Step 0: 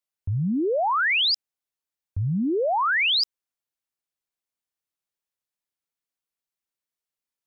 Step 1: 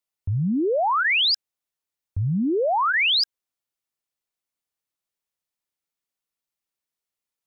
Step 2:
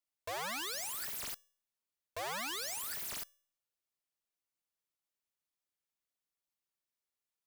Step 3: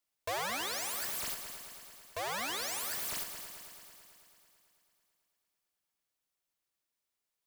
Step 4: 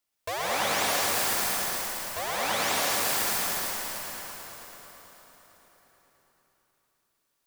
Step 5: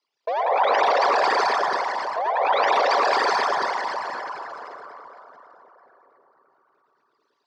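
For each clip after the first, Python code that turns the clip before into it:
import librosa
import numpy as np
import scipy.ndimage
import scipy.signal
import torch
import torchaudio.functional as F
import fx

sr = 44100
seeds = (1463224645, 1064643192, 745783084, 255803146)

y1 = fx.notch(x, sr, hz=1600.0, q=20.0)
y1 = y1 * librosa.db_to_amplitude(1.5)
y2 = (np.mod(10.0 ** (29.5 / 20.0) * y1 + 1.0, 2.0) - 1.0) / 10.0 ** (29.5 / 20.0)
y2 = fx.comb_fb(y2, sr, f0_hz=570.0, decay_s=0.5, harmonics='all', damping=0.0, mix_pct=50)
y3 = fx.rider(y2, sr, range_db=10, speed_s=0.5)
y3 = fx.echo_heads(y3, sr, ms=110, heads='first and second', feedback_pct=68, wet_db=-12.0)
y3 = y3 * librosa.db_to_amplitude(3.0)
y4 = fx.rev_plate(y3, sr, seeds[0], rt60_s=4.8, hf_ratio=0.75, predelay_ms=110, drr_db=-7.0)
y4 = y4 * librosa.db_to_amplitude(3.0)
y5 = fx.envelope_sharpen(y4, sr, power=3.0)
y5 = fx.cabinet(y5, sr, low_hz=170.0, low_slope=24, high_hz=5000.0, hz=(190.0, 420.0, 1000.0, 4600.0), db=(-10, 6, 5, 4))
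y5 = y5 * librosa.db_to_amplitude(6.0)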